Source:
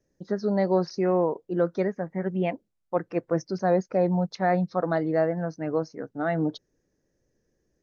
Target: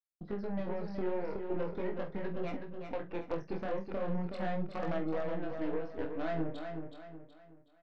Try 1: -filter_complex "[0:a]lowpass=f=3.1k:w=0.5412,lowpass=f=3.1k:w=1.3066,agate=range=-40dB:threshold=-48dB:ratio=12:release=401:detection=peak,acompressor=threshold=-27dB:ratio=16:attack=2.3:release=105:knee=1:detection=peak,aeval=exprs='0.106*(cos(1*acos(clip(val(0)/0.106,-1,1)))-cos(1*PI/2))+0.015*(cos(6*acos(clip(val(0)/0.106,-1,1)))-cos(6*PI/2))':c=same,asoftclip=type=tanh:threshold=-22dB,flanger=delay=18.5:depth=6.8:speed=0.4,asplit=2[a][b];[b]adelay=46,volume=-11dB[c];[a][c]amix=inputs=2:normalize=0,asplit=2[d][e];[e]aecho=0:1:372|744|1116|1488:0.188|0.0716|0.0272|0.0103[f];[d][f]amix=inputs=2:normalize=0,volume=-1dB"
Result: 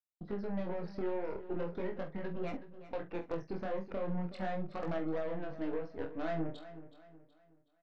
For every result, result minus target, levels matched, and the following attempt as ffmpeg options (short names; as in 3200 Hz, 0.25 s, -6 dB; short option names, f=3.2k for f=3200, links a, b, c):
soft clip: distortion +17 dB; echo-to-direct -8 dB
-filter_complex "[0:a]lowpass=f=3.1k:w=0.5412,lowpass=f=3.1k:w=1.3066,agate=range=-40dB:threshold=-48dB:ratio=12:release=401:detection=peak,acompressor=threshold=-27dB:ratio=16:attack=2.3:release=105:knee=1:detection=peak,aeval=exprs='0.106*(cos(1*acos(clip(val(0)/0.106,-1,1)))-cos(1*PI/2))+0.015*(cos(6*acos(clip(val(0)/0.106,-1,1)))-cos(6*PI/2))':c=same,asoftclip=type=tanh:threshold=-13dB,flanger=delay=18.5:depth=6.8:speed=0.4,asplit=2[a][b];[b]adelay=46,volume=-11dB[c];[a][c]amix=inputs=2:normalize=0,asplit=2[d][e];[e]aecho=0:1:372|744|1116|1488:0.188|0.0716|0.0272|0.0103[f];[d][f]amix=inputs=2:normalize=0,volume=-1dB"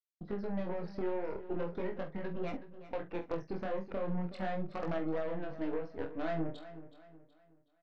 echo-to-direct -8 dB
-filter_complex "[0:a]lowpass=f=3.1k:w=0.5412,lowpass=f=3.1k:w=1.3066,agate=range=-40dB:threshold=-48dB:ratio=12:release=401:detection=peak,acompressor=threshold=-27dB:ratio=16:attack=2.3:release=105:knee=1:detection=peak,aeval=exprs='0.106*(cos(1*acos(clip(val(0)/0.106,-1,1)))-cos(1*PI/2))+0.015*(cos(6*acos(clip(val(0)/0.106,-1,1)))-cos(6*PI/2))':c=same,asoftclip=type=tanh:threshold=-13dB,flanger=delay=18.5:depth=6.8:speed=0.4,asplit=2[a][b];[b]adelay=46,volume=-11dB[c];[a][c]amix=inputs=2:normalize=0,asplit=2[d][e];[e]aecho=0:1:372|744|1116|1488:0.473|0.18|0.0683|0.026[f];[d][f]amix=inputs=2:normalize=0,volume=-1dB"